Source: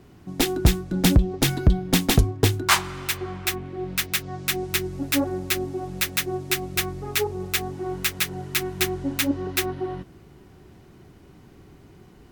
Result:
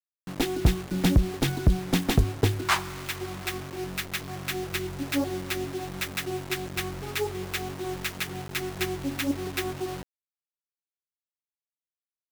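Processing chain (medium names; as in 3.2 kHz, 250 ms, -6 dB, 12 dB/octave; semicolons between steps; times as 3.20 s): treble shelf 4.4 kHz -8.5 dB; bit crusher 6-bit; trim -3.5 dB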